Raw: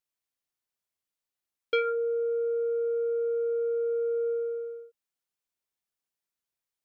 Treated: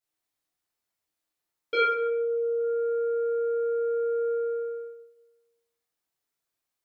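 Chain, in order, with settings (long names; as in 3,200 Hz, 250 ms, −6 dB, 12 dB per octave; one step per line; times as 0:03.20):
0:01.86–0:02.60: spectral envelope exaggerated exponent 1.5
dense smooth reverb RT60 1 s, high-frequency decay 0.6×, DRR −10 dB
level −5 dB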